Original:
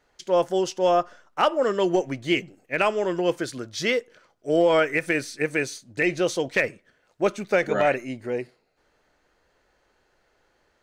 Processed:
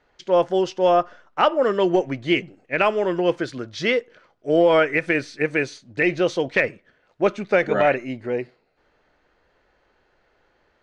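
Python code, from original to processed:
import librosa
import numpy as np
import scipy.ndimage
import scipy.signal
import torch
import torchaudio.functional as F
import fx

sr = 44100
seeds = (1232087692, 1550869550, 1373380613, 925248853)

y = scipy.signal.sosfilt(scipy.signal.butter(2, 3900.0, 'lowpass', fs=sr, output='sos'), x)
y = y * librosa.db_to_amplitude(3.0)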